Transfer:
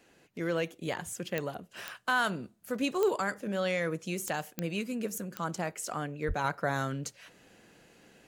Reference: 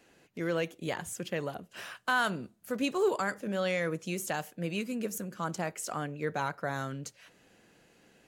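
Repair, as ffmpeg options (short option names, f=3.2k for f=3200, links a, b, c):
-filter_complex "[0:a]adeclick=t=4,asplit=3[a][b][c];[a]afade=t=out:st=6.27:d=0.02[d];[b]highpass=f=140:w=0.5412,highpass=f=140:w=1.3066,afade=t=in:st=6.27:d=0.02,afade=t=out:st=6.39:d=0.02[e];[c]afade=t=in:st=6.39:d=0.02[f];[d][e][f]amix=inputs=3:normalize=0,asetnsamples=n=441:p=0,asendcmd='6.44 volume volume -3.5dB',volume=0dB"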